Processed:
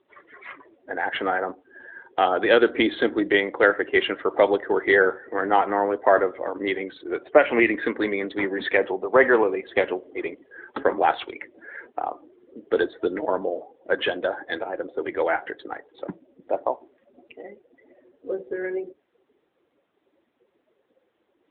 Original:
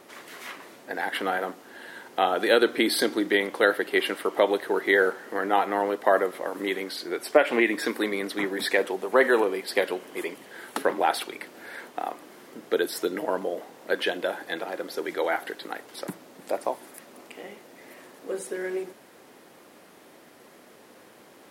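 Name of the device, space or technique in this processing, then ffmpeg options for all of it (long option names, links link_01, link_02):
mobile call with aggressive noise cancelling: -filter_complex "[0:a]asettb=1/sr,asplit=3[link_01][link_02][link_03];[link_01]atrim=end=17.424[link_04];[link_02]atrim=start=17.42:end=18.43,asetpts=PTS-STARTPTS,afade=type=in:duration=0.004:curve=qsin,afade=type=out:start_time=1.006:duration=0.004:curve=qsin,acrossover=split=2600[link_05][link_06];[link_06]acompressor=threshold=-58dB:ratio=4:attack=1:release=60[link_07];[link_05][link_07]amix=inputs=2:normalize=0[link_08];[link_03]atrim=start=18.426[link_09];[link_04][link_08]acrossfade=duration=0.004:curve1=hsin:curve2=qsin[link_10];[link_10][link_09]acrossfade=duration=0.004:curve1=qsin:curve2=hsin,highpass=frequency=170:poles=1,afftdn=noise_reduction=23:noise_floor=-38,volume=4dB" -ar 8000 -c:a libopencore_amrnb -b:a 10200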